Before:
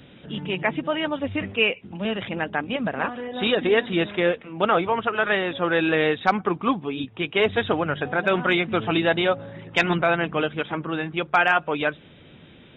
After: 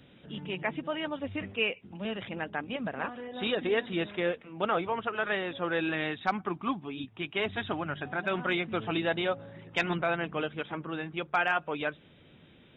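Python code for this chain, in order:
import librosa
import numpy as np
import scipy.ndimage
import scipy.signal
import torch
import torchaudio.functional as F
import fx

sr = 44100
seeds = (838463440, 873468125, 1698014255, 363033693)

y = fx.peak_eq(x, sr, hz=480.0, db=-13.5, octaves=0.21, at=(5.9, 8.39))
y = y * librosa.db_to_amplitude(-8.5)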